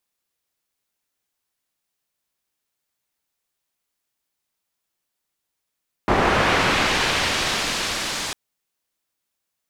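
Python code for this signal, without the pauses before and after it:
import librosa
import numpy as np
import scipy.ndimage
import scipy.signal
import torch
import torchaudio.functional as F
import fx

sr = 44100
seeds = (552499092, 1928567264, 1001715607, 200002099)

y = fx.riser_noise(sr, seeds[0], length_s=2.25, colour='white', kind='lowpass', start_hz=940.0, end_hz=6100.0, q=0.76, swell_db=-18, law='linear')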